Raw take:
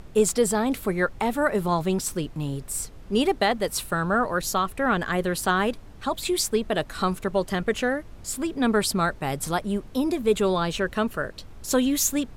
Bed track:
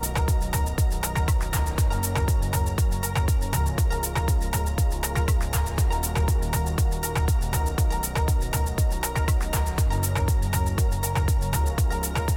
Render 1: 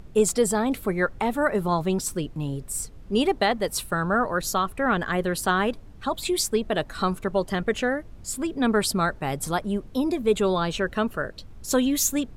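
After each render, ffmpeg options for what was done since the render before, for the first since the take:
ffmpeg -i in.wav -af "afftdn=noise_reduction=6:noise_floor=-44" out.wav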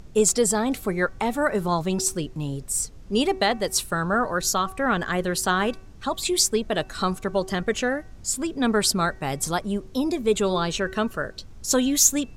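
ffmpeg -i in.wav -af "equalizer=frequency=6200:width=1.1:gain=8,bandreject=frequency=379.5:width_type=h:width=4,bandreject=frequency=759:width_type=h:width=4,bandreject=frequency=1138.5:width_type=h:width=4,bandreject=frequency=1518:width_type=h:width=4,bandreject=frequency=1897.5:width_type=h:width=4,bandreject=frequency=2277:width_type=h:width=4,bandreject=frequency=2656.5:width_type=h:width=4" out.wav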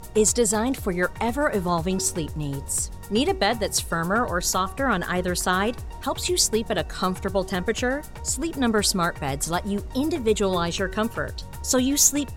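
ffmpeg -i in.wav -i bed.wav -filter_complex "[1:a]volume=-14.5dB[link_01];[0:a][link_01]amix=inputs=2:normalize=0" out.wav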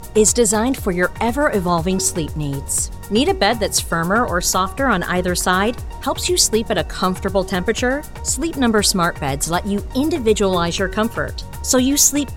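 ffmpeg -i in.wav -af "volume=6dB,alimiter=limit=-2dB:level=0:latency=1" out.wav

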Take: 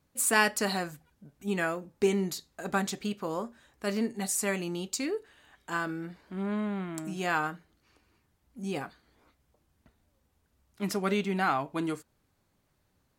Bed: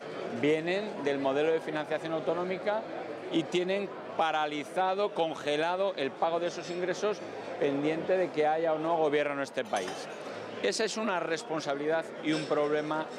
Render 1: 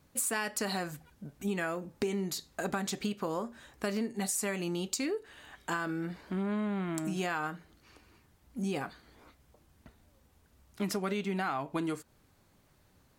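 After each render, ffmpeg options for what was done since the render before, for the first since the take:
ffmpeg -i in.wav -filter_complex "[0:a]asplit=2[link_01][link_02];[link_02]alimiter=limit=-20.5dB:level=0:latency=1:release=101,volume=2dB[link_03];[link_01][link_03]amix=inputs=2:normalize=0,acompressor=threshold=-31dB:ratio=5" out.wav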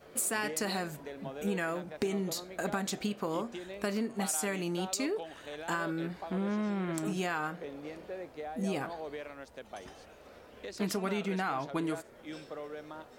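ffmpeg -i in.wav -i bed.wav -filter_complex "[1:a]volume=-14dB[link_01];[0:a][link_01]amix=inputs=2:normalize=0" out.wav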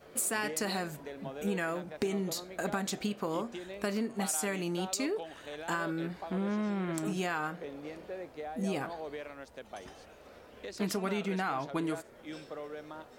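ffmpeg -i in.wav -af anull out.wav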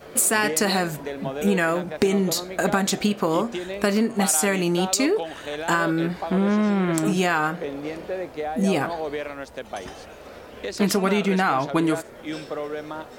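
ffmpeg -i in.wav -af "volume=12dB" out.wav

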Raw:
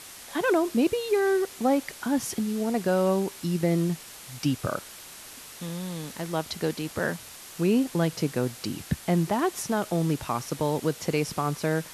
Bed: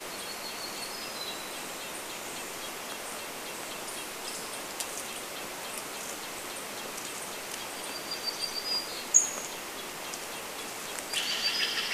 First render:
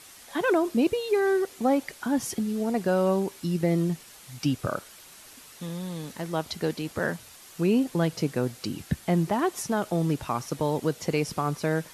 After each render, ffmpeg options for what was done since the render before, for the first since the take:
ffmpeg -i in.wav -af "afftdn=noise_reduction=6:noise_floor=-45" out.wav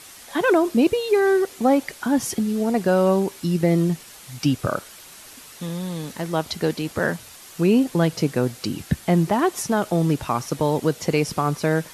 ffmpeg -i in.wav -af "volume=5.5dB" out.wav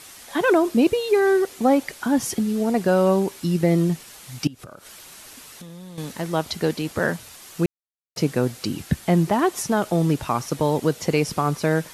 ffmpeg -i in.wav -filter_complex "[0:a]asettb=1/sr,asplit=3[link_01][link_02][link_03];[link_01]atrim=end=4.474[link_04];[link_02]atrim=start=4.47:end=5.98,asetpts=PTS-STARTPTS,afade=type=in:duration=0.004:curve=qsin,afade=type=out:start_time=1.506:duration=0.004:curve=qsin,acompressor=threshold=-36dB:ratio=16:attack=3.2:release=140:knee=1:detection=peak[link_05];[link_03]atrim=start=5.976[link_06];[link_04][link_05]acrossfade=duration=0.004:curve1=hsin:curve2=qsin[link_07];[link_07][link_06]acrossfade=duration=0.004:curve1=qsin:curve2=hsin,asplit=3[link_08][link_09][link_10];[link_08]atrim=end=7.66,asetpts=PTS-STARTPTS,afade=type=out:start_time=7.656:duration=0.004:curve=hsin[link_11];[link_09]atrim=start=7.66:end=8.16,asetpts=PTS-STARTPTS,volume=0[link_12];[link_10]atrim=start=8.16,asetpts=PTS-STARTPTS,afade=type=in:duration=0.004:curve=hsin[link_13];[link_11][link_12][link_13]concat=n=3:v=0:a=1" out.wav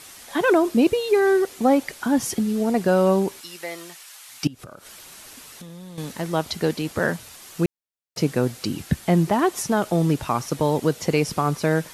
ffmpeg -i in.wav -filter_complex "[0:a]asettb=1/sr,asplit=3[link_01][link_02][link_03];[link_01]atrim=end=3.414[link_04];[link_02]atrim=start=3.41:end=4.43,asetpts=PTS-STARTPTS,afade=type=in:duration=0.004:curve=qsin,afade=type=out:start_time=1.016:duration=0.004:curve=qsin,highpass=990[link_05];[link_03]atrim=start=4.426[link_06];[link_04][link_05]acrossfade=duration=0.004:curve1=hsin:curve2=qsin[link_07];[link_07][link_06]acrossfade=duration=0.004:curve1=qsin:curve2=hsin" out.wav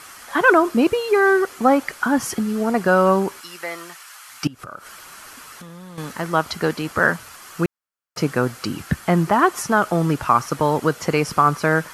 ffmpeg -i in.wav -af "equalizer=frequency=1300:width=1.4:gain=12,bandreject=frequency=3700:width=13" out.wav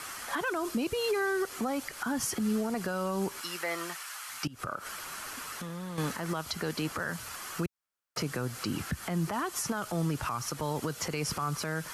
ffmpeg -i in.wav -filter_complex "[0:a]acrossover=split=130|3000[link_01][link_02][link_03];[link_02]acompressor=threshold=-24dB:ratio=6[link_04];[link_01][link_04][link_03]amix=inputs=3:normalize=0,alimiter=limit=-22.5dB:level=0:latency=1:release=112" out.wav

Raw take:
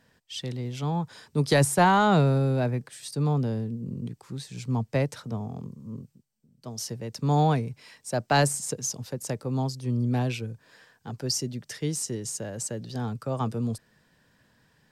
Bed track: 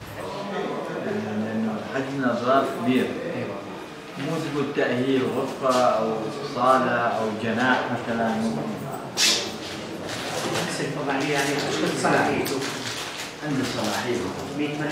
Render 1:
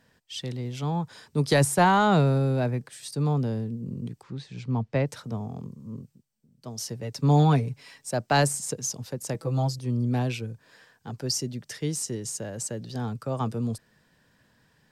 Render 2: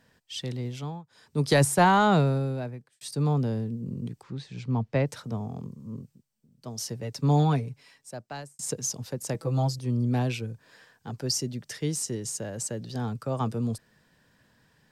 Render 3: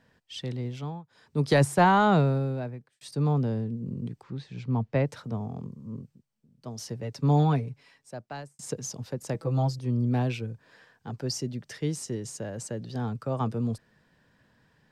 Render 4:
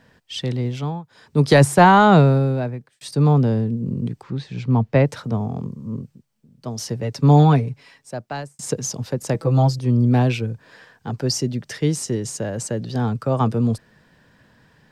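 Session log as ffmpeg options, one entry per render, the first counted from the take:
ffmpeg -i in.wav -filter_complex "[0:a]asettb=1/sr,asplit=3[link_01][link_02][link_03];[link_01]atrim=end=4.234[link_04];[link_02]atrim=start=4.23:end=5.07,asetpts=PTS-STARTPTS,afade=type=in:duration=0.004:curve=qsin,afade=type=out:start_time=0.836:duration=0.004:curve=qsin,lowpass=3800[link_05];[link_03]atrim=start=5.066[link_06];[link_04][link_05]acrossfade=duration=0.004:curve1=hsin:curve2=qsin[link_07];[link_07][link_06]acrossfade=duration=0.004:curve1=qsin:curve2=hsin,asettb=1/sr,asplit=3[link_08][link_09][link_10];[link_08]atrim=end=7.024[link_11];[link_09]atrim=start=7.02:end=8.11,asetpts=PTS-STARTPTS,afade=type=in:duration=0.004:curve=qsin,afade=type=out:start_time=1.086:duration=0.004:curve=qsin,aecho=1:1:7.2:0.65,atrim=end_sample=48069[link_12];[link_10]atrim=start=8.106[link_13];[link_11][link_12]acrossfade=duration=0.004:curve1=hsin:curve2=qsin[link_14];[link_14][link_13]acrossfade=duration=0.004:curve1=qsin:curve2=hsin,asettb=1/sr,asplit=3[link_15][link_16][link_17];[link_15]atrim=end=9.344[link_18];[link_16]atrim=start=9.34:end=9.79,asetpts=PTS-STARTPTS,afade=type=in:duration=0.004:curve=qsin,afade=type=out:start_time=0.446:duration=0.004:curve=qsin,aecho=1:1:6.1:0.84,atrim=end_sample=19845[link_19];[link_17]atrim=start=9.786[link_20];[link_18][link_19]acrossfade=duration=0.004:curve1=hsin:curve2=qsin[link_21];[link_21][link_20]acrossfade=duration=0.004:curve1=qsin:curve2=hsin" out.wav
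ffmpeg -i in.wav -filter_complex "[0:a]asplit=5[link_01][link_02][link_03][link_04][link_05];[link_01]atrim=end=1.04,asetpts=PTS-STARTPTS,afade=type=out:start_time=0.66:duration=0.38:silence=0.0891251[link_06];[link_02]atrim=start=1.04:end=1.08,asetpts=PTS-STARTPTS,volume=-21dB[link_07];[link_03]atrim=start=1.08:end=3.01,asetpts=PTS-STARTPTS,afade=type=in:duration=0.38:silence=0.0891251,afade=type=out:start_time=0.99:duration=0.94[link_08];[link_04]atrim=start=3.01:end=8.59,asetpts=PTS-STARTPTS,afade=type=in:duration=0.004:curve=hsin,afade=type=out:start_time=3.96:duration=1.62[link_09];[link_05]atrim=start=8.59,asetpts=PTS-STARTPTS,afade=type=in:duration=0.004:curve=hsin[link_10];[link_06][link_07][link_08][link_09][link_10]concat=n=5:v=0:a=1" out.wav
ffmpeg -i in.wav -af "highshelf=frequency=5300:gain=-11" out.wav
ffmpeg -i in.wav -af "volume=9.5dB,alimiter=limit=-3dB:level=0:latency=1" out.wav

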